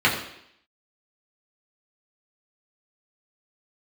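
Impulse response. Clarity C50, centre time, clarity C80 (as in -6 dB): 7.0 dB, 30 ms, 9.0 dB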